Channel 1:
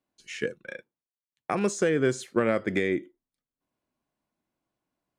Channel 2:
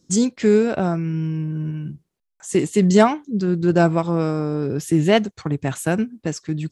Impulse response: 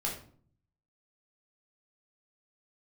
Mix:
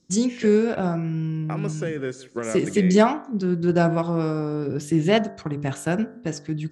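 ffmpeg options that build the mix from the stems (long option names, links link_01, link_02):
-filter_complex "[0:a]volume=-5dB,asplit=2[link_01][link_02];[link_02]volume=-18dB[link_03];[1:a]bandreject=frequency=48.73:width_type=h:width=4,bandreject=frequency=97.46:width_type=h:width=4,bandreject=frequency=146.19:width_type=h:width=4,bandreject=frequency=194.92:width_type=h:width=4,bandreject=frequency=243.65:width_type=h:width=4,bandreject=frequency=292.38:width_type=h:width=4,bandreject=frequency=341.11:width_type=h:width=4,bandreject=frequency=389.84:width_type=h:width=4,bandreject=frequency=438.57:width_type=h:width=4,bandreject=frequency=487.3:width_type=h:width=4,bandreject=frequency=536.03:width_type=h:width=4,bandreject=frequency=584.76:width_type=h:width=4,bandreject=frequency=633.49:width_type=h:width=4,bandreject=frequency=682.22:width_type=h:width=4,bandreject=frequency=730.95:width_type=h:width=4,bandreject=frequency=779.68:width_type=h:width=4,bandreject=frequency=828.41:width_type=h:width=4,bandreject=frequency=877.14:width_type=h:width=4,bandreject=frequency=925.87:width_type=h:width=4,bandreject=frequency=974.6:width_type=h:width=4,bandreject=frequency=1023.33:width_type=h:width=4,bandreject=frequency=1072.06:width_type=h:width=4,bandreject=frequency=1120.79:width_type=h:width=4,bandreject=frequency=1169.52:width_type=h:width=4,bandreject=frequency=1218.25:width_type=h:width=4,bandreject=frequency=1266.98:width_type=h:width=4,bandreject=frequency=1315.71:width_type=h:width=4,bandreject=frequency=1364.44:width_type=h:width=4,bandreject=frequency=1413.17:width_type=h:width=4,bandreject=frequency=1461.9:width_type=h:width=4,bandreject=frequency=1510.63:width_type=h:width=4,bandreject=frequency=1559.36:width_type=h:width=4,bandreject=frequency=1608.09:width_type=h:width=4,bandreject=frequency=1656.82:width_type=h:width=4,bandreject=frequency=1705.55:width_type=h:width=4,bandreject=frequency=1754.28:width_type=h:width=4,bandreject=frequency=1803.01:width_type=h:width=4,bandreject=frequency=1851.74:width_type=h:width=4,volume=-2.5dB[link_04];[link_03]aecho=0:1:162|324|486|648|810:1|0.32|0.102|0.0328|0.0105[link_05];[link_01][link_04][link_05]amix=inputs=3:normalize=0,lowpass=8200"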